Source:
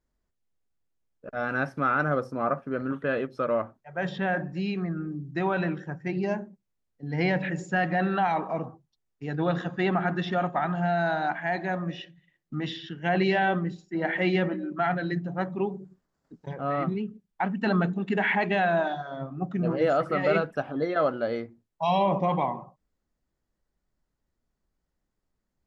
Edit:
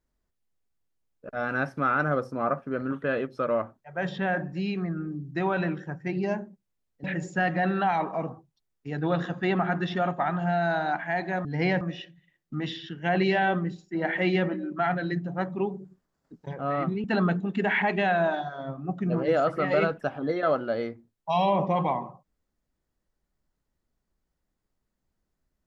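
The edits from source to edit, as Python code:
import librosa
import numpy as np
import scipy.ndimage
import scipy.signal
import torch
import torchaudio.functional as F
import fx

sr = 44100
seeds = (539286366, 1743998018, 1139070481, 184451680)

y = fx.edit(x, sr, fx.move(start_s=7.04, length_s=0.36, to_s=11.81),
    fx.cut(start_s=17.04, length_s=0.53), tone=tone)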